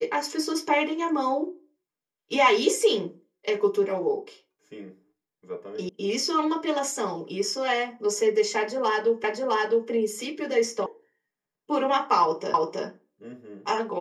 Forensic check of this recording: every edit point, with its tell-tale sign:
0:05.89: cut off before it has died away
0:09.24: the same again, the last 0.66 s
0:10.86: cut off before it has died away
0:12.54: the same again, the last 0.32 s

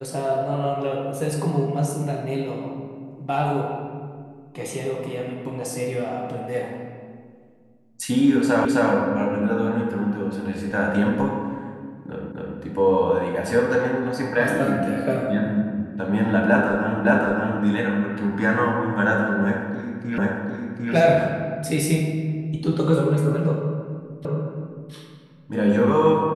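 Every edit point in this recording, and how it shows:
0:08.65: the same again, the last 0.26 s
0:12.32: the same again, the last 0.26 s
0:17.05: the same again, the last 0.57 s
0:20.18: the same again, the last 0.75 s
0:24.25: the same again, the last 0.67 s

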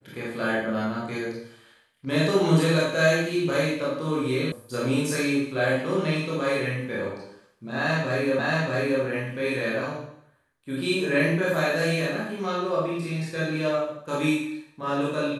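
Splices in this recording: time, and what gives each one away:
0:04.52: cut off before it has died away
0:08.39: the same again, the last 0.63 s

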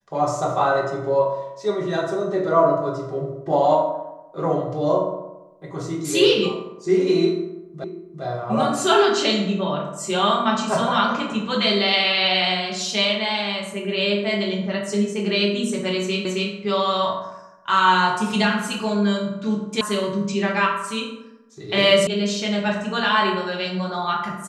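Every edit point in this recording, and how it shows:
0:07.84: the same again, the last 0.4 s
0:16.25: the same again, the last 0.27 s
0:19.81: cut off before it has died away
0:22.07: cut off before it has died away

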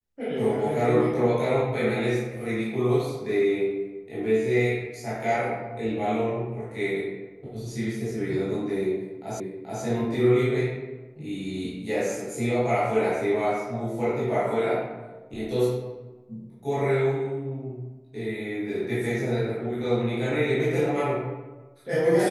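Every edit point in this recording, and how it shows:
0:09.40: the same again, the last 0.43 s

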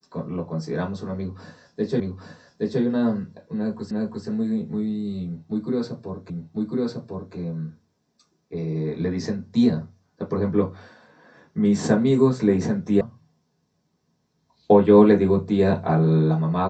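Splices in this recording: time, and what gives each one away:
0:02.00: the same again, the last 0.82 s
0:03.91: the same again, the last 0.35 s
0:06.30: the same again, the last 1.05 s
0:13.01: cut off before it has died away

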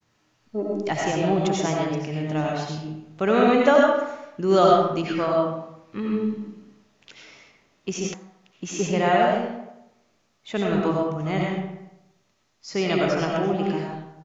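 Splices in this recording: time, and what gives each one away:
0:08.14: cut off before it has died away

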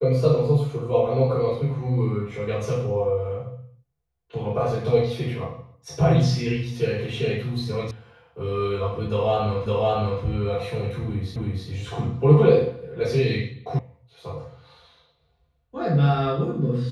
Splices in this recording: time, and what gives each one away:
0:07.91: cut off before it has died away
0:09.66: the same again, the last 0.56 s
0:11.36: the same again, the last 0.32 s
0:13.79: cut off before it has died away

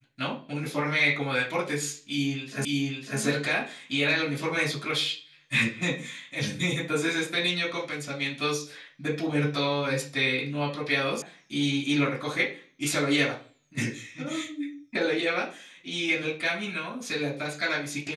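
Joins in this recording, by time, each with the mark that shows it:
0:02.65: the same again, the last 0.55 s
0:11.22: cut off before it has died away

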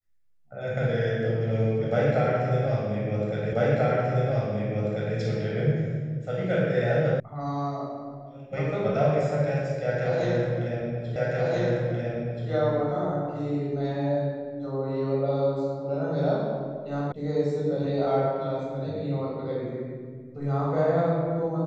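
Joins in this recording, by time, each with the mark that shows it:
0:03.53: the same again, the last 1.64 s
0:07.20: cut off before it has died away
0:11.16: the same again, the last 1.33 s
0:17.12: cut off before it has died away

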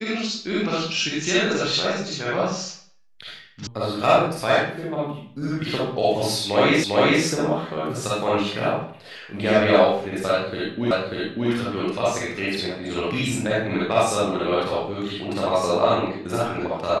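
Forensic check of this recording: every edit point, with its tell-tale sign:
0:03.67: cut off before it has died away
0:06.84: the same again, the last 0.4 s
0:10.91: the same again, the last 0.59 s

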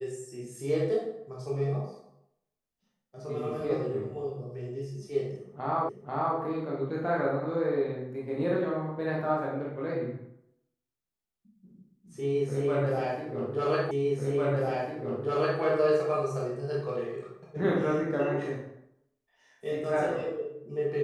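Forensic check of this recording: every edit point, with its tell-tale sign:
0:05.89: the same again, the last 0.49 s
0:13.91: the same again, the last 1.7 s

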